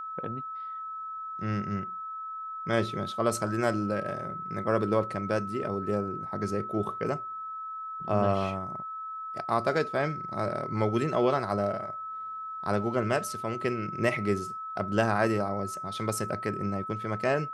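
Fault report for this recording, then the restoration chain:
tone 1300 Hz -35 dBFS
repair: notch 1300 Hz, Q 30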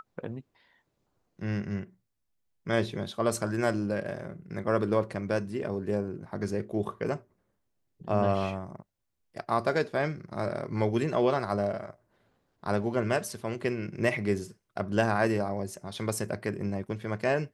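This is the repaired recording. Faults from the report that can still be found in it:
none

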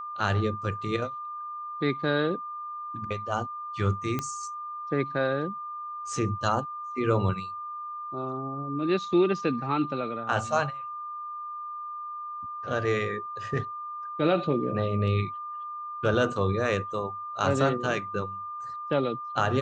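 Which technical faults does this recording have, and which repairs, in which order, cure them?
tone 1200 Hz -34 dBFS
4.19 pop -15 dBFS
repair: de-click; notch 1200 Hz, Q 30

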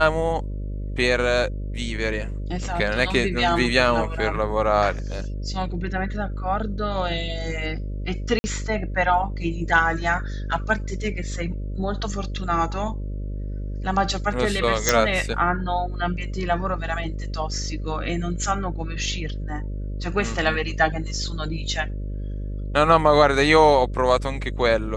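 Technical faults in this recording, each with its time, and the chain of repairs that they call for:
buzz 50 Hz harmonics 12 -29 dBFS
8.39–8.44 gap 50 ms
14.89 pop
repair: de-click; de-hum 50 Hz, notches 12; interpolate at 8.39, 50 ms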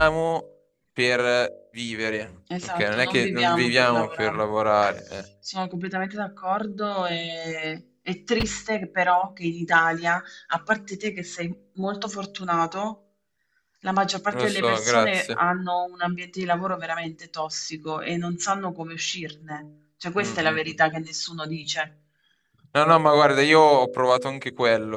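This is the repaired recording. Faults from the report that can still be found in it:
none

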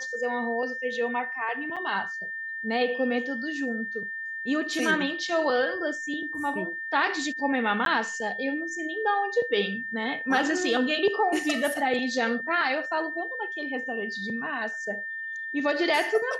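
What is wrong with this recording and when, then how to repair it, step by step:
tone 1800 Hz -32 dBFS
1.76–1.77 gap 6.2 ms
7.85–7.86 gap 12 ms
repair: notch 1800 Hz, Q 30; interpolate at 1.76, 6.2 ms; interpolate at 7.85, 12 ms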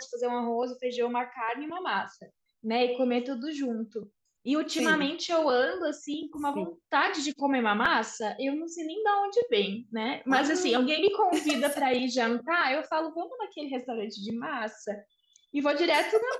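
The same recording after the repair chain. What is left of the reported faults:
none

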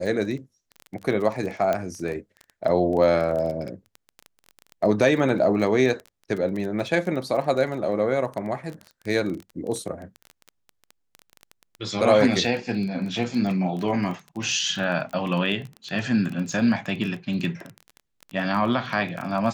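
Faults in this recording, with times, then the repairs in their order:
crackle 20/s -29 dBFS
1.73 pop -12 dBFS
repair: de-click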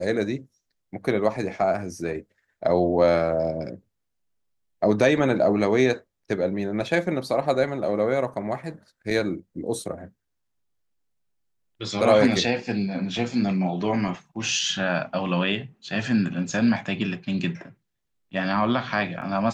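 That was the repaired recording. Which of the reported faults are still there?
none

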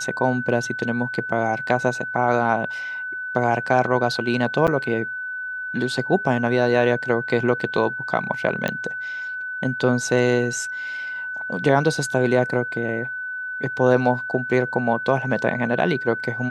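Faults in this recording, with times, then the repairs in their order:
tone 1500 Hz -27 dBFS
4.67–4.68 gap 7.4 ms
8.68 pop -10 dBFS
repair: de-click; notch 1500 Hz, Q 30; interpolate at 4.67, 7.4 ms

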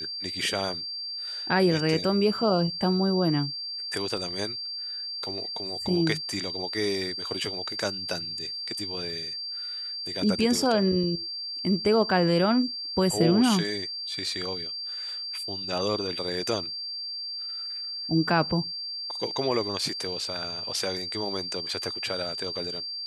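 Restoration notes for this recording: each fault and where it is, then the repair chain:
tone 4700 Hz -32 dBFS
4.17 gap 2.4 ms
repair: notch 4700 Hz, Q 30; interpolate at 4.17, 2.4 ms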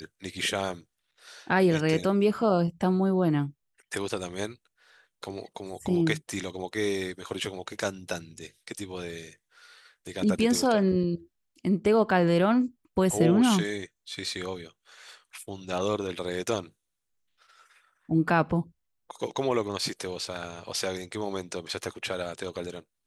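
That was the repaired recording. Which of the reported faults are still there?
none

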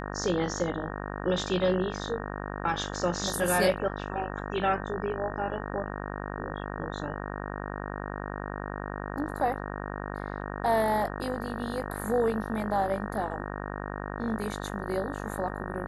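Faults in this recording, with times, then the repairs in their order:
buzz 50 Hz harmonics 37 -36 dBFS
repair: de-hum 50 Hz, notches 37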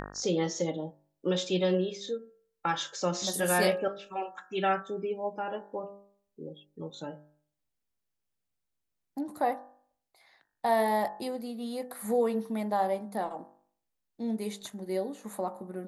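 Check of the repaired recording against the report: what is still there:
none

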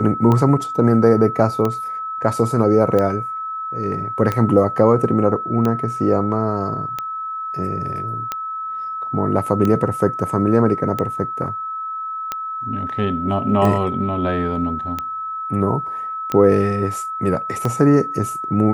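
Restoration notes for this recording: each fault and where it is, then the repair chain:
tick 45 rpm -9 dBFS
tone 1300 Hz -24 dBFS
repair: de-click; notch 1300 Hz, Q 30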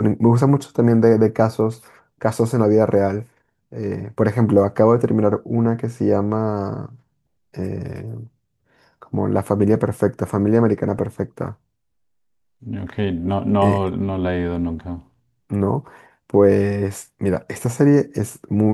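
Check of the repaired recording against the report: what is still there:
none

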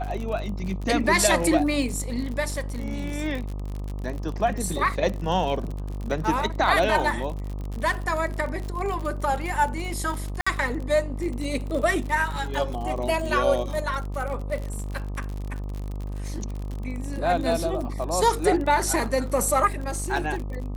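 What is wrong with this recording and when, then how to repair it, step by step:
buzz 50 Hz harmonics 25 -31 dBFS
crackle 56/s -30 dBFS
10.41–10.46 gap 55 ms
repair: de-click; de-hum 50 Hz, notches 25; interpolate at 10.41, 55 ms

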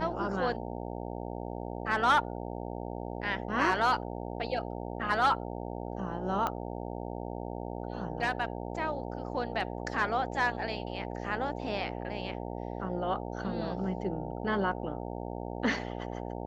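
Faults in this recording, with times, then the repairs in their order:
buzz 60 Hz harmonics 15 -38 dBFS
6.47 pop -18 dBFS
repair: de-click; de-hum 60 Hz, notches 15

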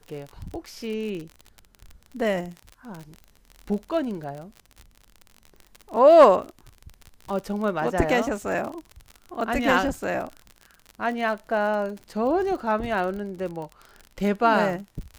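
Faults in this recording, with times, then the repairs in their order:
crackle 46/s -31 dBFS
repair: de-click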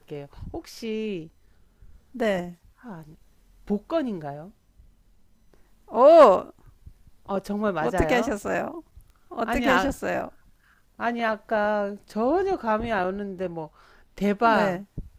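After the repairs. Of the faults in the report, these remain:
none

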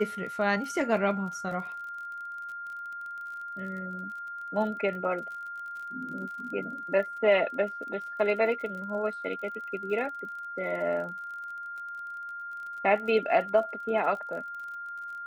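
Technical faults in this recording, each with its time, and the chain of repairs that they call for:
crackle 35/s -39 dBFS
tone 1400 Hz -36 dBFS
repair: de-click; notch 1400 Hz, Q 30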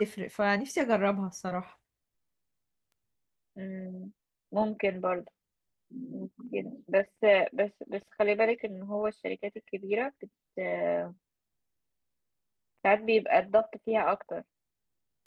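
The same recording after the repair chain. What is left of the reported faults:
none

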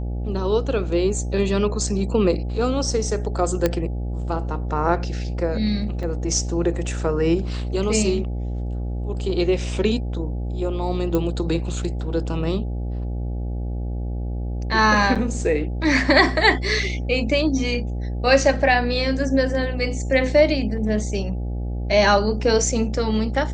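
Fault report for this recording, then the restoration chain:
buzz 60 Hz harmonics 14 -26 dBFS
3.66 pop -6 dBFS
6.03 gap 4.9 ms
11.15 pop -10 dBFS
15.15–15.16 gap 6.4 ms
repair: de-click; de-hum 60 Hz, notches 14; interpolate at 6.03, 4.9 ms; interpolate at 15.15, 6.4 ms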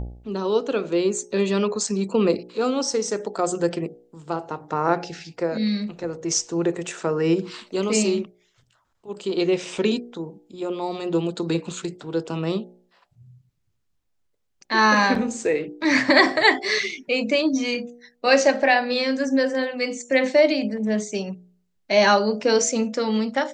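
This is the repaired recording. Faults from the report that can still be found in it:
none

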